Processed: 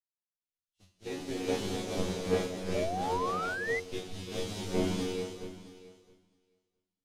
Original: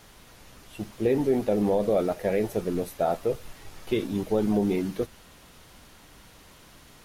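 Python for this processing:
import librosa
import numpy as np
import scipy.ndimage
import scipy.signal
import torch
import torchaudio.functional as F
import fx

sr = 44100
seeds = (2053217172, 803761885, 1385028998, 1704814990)

p1 = fx.spec_flatten(x, sr, power=0.53)
p2 = fx.peak_eq(p1, sr, hz=590.0, db=-6.0, octaves=0.24)
p3 = fx.noise_reduce_blind(p2, sr, reduce_db=11)
p4 = fx.peak_eq(p3, sr, hz=1500.0, db=-8.5, octaves=2.6)
p5 = fx.comb_fb(p4, sr, f0_hz=92.0, decay_s=0.31, harmonics='all', damping=0.0, mix_pct=100)
p6 = p5 + fx.echo_feedback(p5, sr, ms=665, feedback_pct=28, wet_db=-8.5, dry=0)
p7 = fx.rev_gated(p6, sr, seeds[0], gate_ms=460, shape='rising', drr_db=-2.5)
p8 = fx.spec_paint(p7, sr, seeds[1], shape='rise', start_s=2.74, length_s=1.06, low_hz=570.0, high_hz=2100.0, level_db=-35.0)
p9 = scipy.signal.sosfilt(scipy.signal.butter(2, 5500.0, 'lowpass', fs=sr, output='sos'), p8)
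y = fx.band_widen(p9, sr, depth_pct=100)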